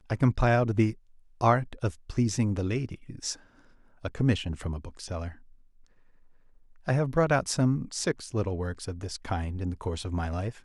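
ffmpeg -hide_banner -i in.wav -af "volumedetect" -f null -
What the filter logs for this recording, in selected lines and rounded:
mean_volume: -29.1 dB
max_volume: -7.8 dB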